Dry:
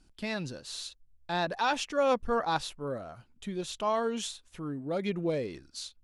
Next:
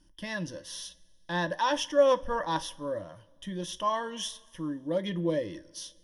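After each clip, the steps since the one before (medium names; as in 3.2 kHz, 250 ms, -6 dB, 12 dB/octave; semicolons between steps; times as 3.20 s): rippled EQ curve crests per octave 1.2, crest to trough 15 dB; on a send at -11 dB: reverberation, pre-delay 3 ms; on the sum: trim -2 dB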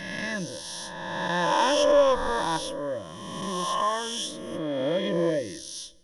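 reverse spectral sustain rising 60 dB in 1.90 s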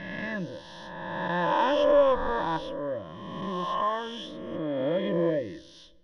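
distance through air 340 m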